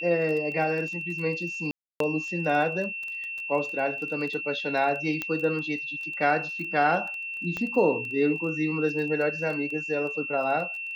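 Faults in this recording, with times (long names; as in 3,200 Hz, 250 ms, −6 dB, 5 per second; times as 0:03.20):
surface crackle 15 per second −33 dBFS
whistle 2,700 Hz −32 dBFS
0:01.71–0:02.00: drop-out 293 ms
0:05.22: click −15 dBFS
0:07.57: click −18 dBFS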